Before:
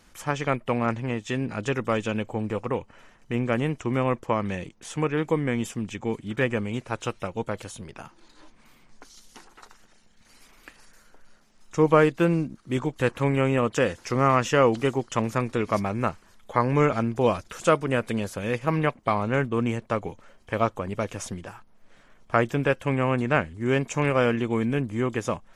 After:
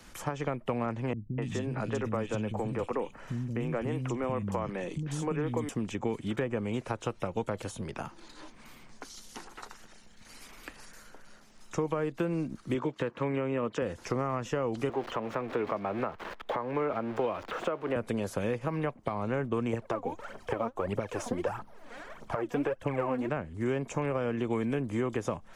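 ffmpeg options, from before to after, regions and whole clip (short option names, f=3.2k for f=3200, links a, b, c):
-filter_complex "[0:a]asettb=1/sr,asplit=3[a][b][c];[a]atrim=end=1.134[d];[b]atrim=start=1.13:end=5.69,asetpts=PTS-STARTPTS,afade=t=in:d=0.004:c=qsin,afade=t=out:st=4.556:d=0.004:c=qsin,bass=f=250:g=5,treble=f=4k:g=1,acompressor=threshold=-30dB:ratio=2:attack=3.2:release=140:knee=1:detection=peak,acrossover=split=250|2600[e][f][g];[f]adelay=250[h];[g]adelay=290[i];[e][h][i]amix=inputs=3:normalize=0,atrim=end_sample=201096[j];[c]atrim=start=5.686[k];[d][j]acrossfade=d=0.004:c1=hsin:c2=qsin[l];[l][k]acrossfade=d=0.004:c1=qsin:c2=hsin,asettb=1/sr,asplit=3[m][n][o];[m]atrim=end=12.744[p];[n]atrim=start=12.74:end=13.82,asetpts=PTS-STARTPTS,afade=t=in:d=0.004:c=qsin,afade=t=out:st=1.076:d=0.004:c=qsin,highpass=150,lowpass=3.2k,aemphasis=mode=production:type=cd,bandreject=f=760:w=7.1[q];[o]atrim=start=13.816[r];[p][q]acrossfade=d=0.004:c1=hsin:c2=qsin[s];[s][r]acrossfade=d=0.004:c1=qsin:c2=hsin,asettb=1/sr,asplit=3[t][u][v];[t]atrim=end=14.894[w];[u]atrim=start=14.89:end=17.96,asetpts=PTS-STARTPTS,afade=t=in:d=0.004:c=qsin,afade=t=out:st=3.066:d=0.004:c=qsin,aeval=exprs='val(0)+0.5*0.0299*sgn(val(0))':c=same,acrossover=split=300 3400:gain=0.158 1 0.0708[x][y][z];[x][y][z]amix=inputs=3:normalize=0[aa];[v]atrim=start=17.956[ab];[w][aa]acrossfade=d=0.004:c1=hsin:c2=qsin[ac];[ac][ab]acrossfade=d=0.004:c1=qsin:c2=hsin,asettb=1/sr,asplit=3[ad][ae][af];[ad]atrim=end=19.734[ag];[ae]atrim=start=19.73:end=23.29,asetpts=PTS-STARTPTS,afade=t=in:d=0.004:c=qsin,afade=t=out:st=3.556:d=0.004:c=qsin,equalizer=f=730:t=o:w=2.7:g=8,aphaser=in_gain=1:out_gain=1:delay=4.4:decay=0.65:speed=1.6:type=triangular[ah];[af]atrim=start=23.286[ai];[ag][ah]acrossfade=d=0.004:c1=hsin:c2=qsin[aj];[aj][ai]acrossfade=d=0.004:c1=qsin:c2=hsin,acompressor=threshold=-28dB:ratio=2.5,alimiter=limit=-19.5dB:level=0:latency=1:release=400,acrossover=split=85|300|1200[ak][al][am][an];[ak]acompressor=threshold=-54dB:ratio=4[ao];[al]acompressor=threshold=-40dB:ratio=4[ap];[am]acompressor=threshold=-34dB:ratio=4[aq];[an]acompressor=threshold=-49dB:ratio=4[ar];[ao][ap][aq][ar]amix=inputs=4:normalize=0,volume=4.5dB"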